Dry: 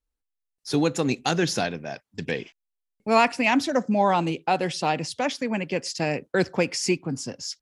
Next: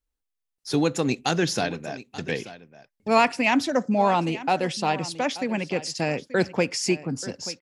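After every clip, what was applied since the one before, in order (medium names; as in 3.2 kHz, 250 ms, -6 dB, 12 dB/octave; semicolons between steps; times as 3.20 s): delay 883 ms -16 dB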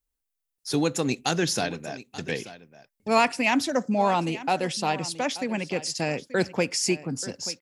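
treble shelf 7.4 kHz +10 dB; trim -2 dB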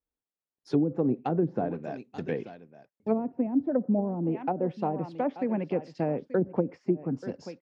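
low-pass that closes with the level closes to 310 Hz, closed at -19 dBFS; band-pass filter 320 Hz, Q 0.52; trim +1.5 dB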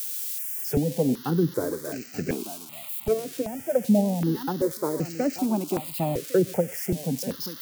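zero-crossing glitches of -29 dBFS; stepped phaser 2.6 Hz 230–3500 Hz; trim +6.5 dB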